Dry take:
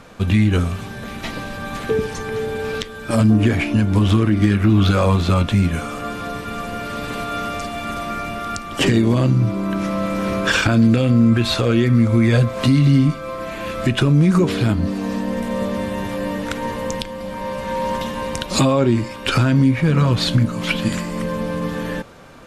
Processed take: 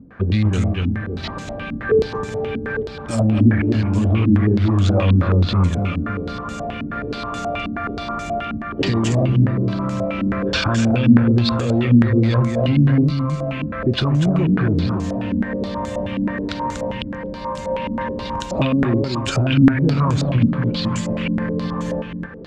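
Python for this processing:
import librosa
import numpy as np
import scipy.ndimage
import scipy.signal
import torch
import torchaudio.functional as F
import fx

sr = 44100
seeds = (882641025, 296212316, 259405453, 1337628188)

y = fx.echo_multitap(x, sr, ms=(242, 557), db=(-5.5, -12.5))
y = fx.cheby_harmonics(y, sr, harmonics=(5,), levels_db=(-19,), full_scale_db=-1.5)
y = scipy.signal.sosfilt(scipy.signal.butter(2, 44.0, 'highpass', fs=sr, output='sos'), y)
y = fx.low_shelf(y, sr, hz=130.0, db=9.0)
y = fx.filter_held_lowpass(y, sr, hz=9.4, low_hz=260.0, high_hz=7100.0)
y = F.gain(torch.from_numpy(y), -9.0).numpy()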